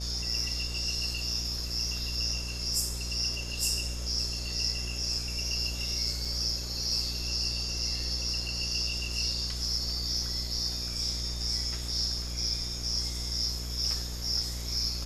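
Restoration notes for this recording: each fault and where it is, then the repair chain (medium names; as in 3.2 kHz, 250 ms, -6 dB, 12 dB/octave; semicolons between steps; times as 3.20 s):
buzz 60 Hz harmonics 12 -37 dBFS
6.25 s: dropout 3.7 ms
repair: de-hum 60 Hz, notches 12; interpolate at 6.25 s, 3.7 ms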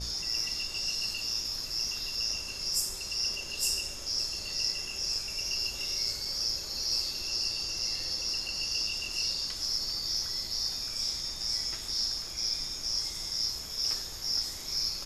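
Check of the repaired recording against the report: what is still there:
nothing left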